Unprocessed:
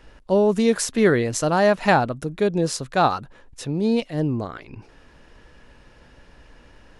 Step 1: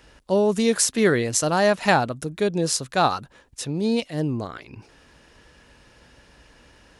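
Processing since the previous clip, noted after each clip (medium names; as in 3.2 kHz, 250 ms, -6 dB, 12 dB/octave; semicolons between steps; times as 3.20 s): high-pass 44 Hz; treble shelf 3.4 kHz +9 dB; trim -2 dB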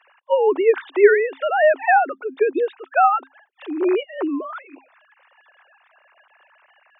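formants replaced by sine waves; rippled Chebyshev high-pass 260 Hz, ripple 6 dB; trim +7 dB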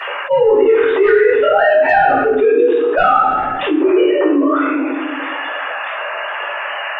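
saturation -6.5 dBFS, distortion -19 dB; reverberation RT60 0.85 s, pre-delay 4 ms, DRR -9.5 dB; level flattener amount 70%; trim -14 dB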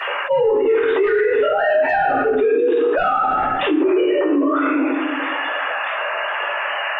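peak limiter -10 dBFS, peak gain reduction 8 dB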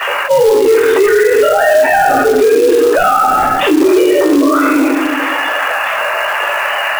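short-mantissa float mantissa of 2-bit; trim +7.5 dB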